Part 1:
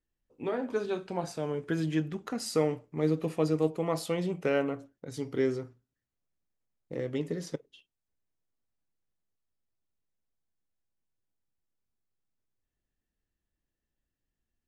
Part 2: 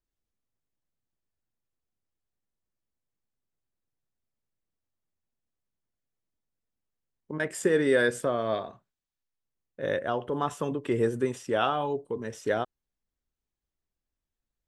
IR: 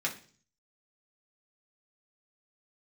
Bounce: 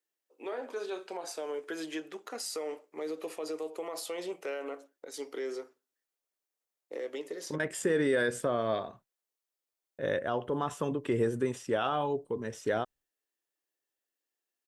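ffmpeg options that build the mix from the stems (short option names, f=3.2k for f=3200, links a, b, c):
-filter_complex "[0:a]highpass=f=370:w=0.5412,highpass=f=370:w=1.3066,highshelf=f=5.6k:g=6,alimiter=level_in=4.5dB:limit=-24dB:level=0:latency=1:release=77,volume=-4.5dB,volume=0dB[a];[1:a]agate=range=-33dB:threshold=-48dB:ratio=3:detection=peak,adelay=200,volume=-1.5dB[b];[a][b]amix=inputs=2:normalize=0,alimiter=limit=-19dB:level=0:latency=1:release=48"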